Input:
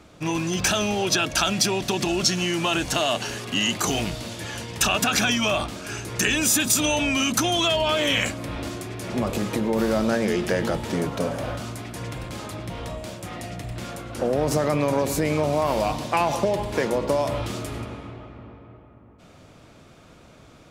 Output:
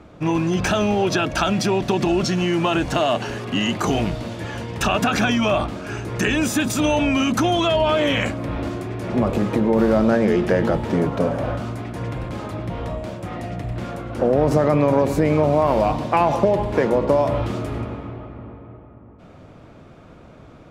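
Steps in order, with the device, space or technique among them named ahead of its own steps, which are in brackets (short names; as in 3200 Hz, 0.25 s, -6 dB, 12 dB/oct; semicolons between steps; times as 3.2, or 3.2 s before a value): through cloth (high shelf 3000 Hz -17 dB); gain +6 dB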